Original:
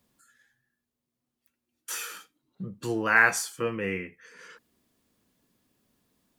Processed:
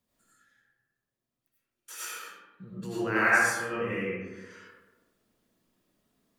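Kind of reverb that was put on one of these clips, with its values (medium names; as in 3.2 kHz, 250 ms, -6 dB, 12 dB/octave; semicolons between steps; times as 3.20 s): algorithmic reverb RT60 1.2 s, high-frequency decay 0.45×, pre-delay 55 ms, DRR -9 dB; trim -10.5 dB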